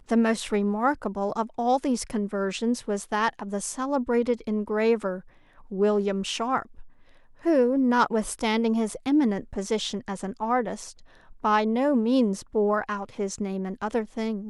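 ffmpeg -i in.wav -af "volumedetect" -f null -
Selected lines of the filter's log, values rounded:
mean_volume: -25.9 dB
max_volume: -9.1 dB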